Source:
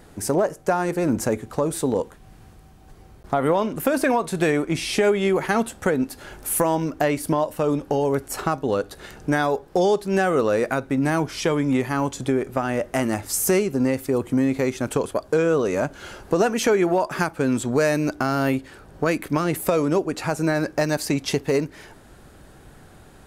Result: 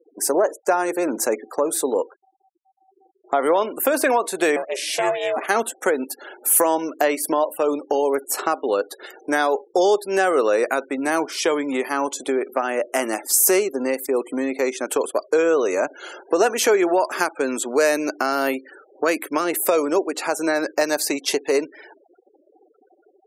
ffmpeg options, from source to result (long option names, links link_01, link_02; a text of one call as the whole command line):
ffmpeg -i in.wav -filter_complex "[0:a]asettb=1/sr,asplit=3[link_01][link_02][link_03];[link_01]atrim=end=4.564[link_04];[link_02]atrim=start=4.56:end=5.48,asetpts=PTS-STARTPTS,afade=type=in:duration=0.004:curve=qsin,afade=type=out:start_time=0.916:duration=0.004:curve=qsin,aeval=exprs='val(0)*sin(2*PI*260*n/s)':channel_layout=same[link_05];[link_03]atrim=start=5.476[link_06];[link_04][link_05]acrossfade=duration=0.004:curve1=hsin:curve2=qsin[link_07];[link_07][link_06]acrossfade=duration=0.004:curve1=qsin:curve2=hsin,highpass=frequency=320:width=0.5412,highpass=frequency=320:width=1.3066,highshelf=frequency=7300:gain=7.5,afftfilt=real='re*gte(hypot(re,im),0.0112)':imag='im*gte(hypot(re,im),0.0112)':win_size=1024:overlap=0.75,volume=2.5dB" out.wav